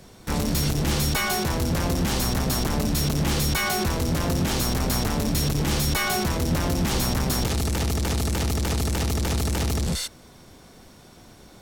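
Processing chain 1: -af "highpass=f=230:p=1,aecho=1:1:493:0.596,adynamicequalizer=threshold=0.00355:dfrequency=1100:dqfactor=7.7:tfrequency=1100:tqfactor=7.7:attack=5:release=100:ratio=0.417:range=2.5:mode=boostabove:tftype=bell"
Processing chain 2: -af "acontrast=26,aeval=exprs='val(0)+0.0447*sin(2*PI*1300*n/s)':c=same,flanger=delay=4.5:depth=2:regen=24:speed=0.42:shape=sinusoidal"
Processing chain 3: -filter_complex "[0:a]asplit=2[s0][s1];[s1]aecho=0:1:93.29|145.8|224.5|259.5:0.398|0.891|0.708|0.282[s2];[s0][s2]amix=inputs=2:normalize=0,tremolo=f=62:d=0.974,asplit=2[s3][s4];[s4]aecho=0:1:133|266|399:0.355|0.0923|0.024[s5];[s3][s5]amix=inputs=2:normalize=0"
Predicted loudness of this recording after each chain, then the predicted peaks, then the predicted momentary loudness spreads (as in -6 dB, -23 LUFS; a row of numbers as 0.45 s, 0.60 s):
-25.0 LUFS, -23.0 LUFS, -24.0 LUFS; -12.5 dBFS, -11.0 dBFS, -7.5 dBFS; 5 LU, 10 LU, 2 LU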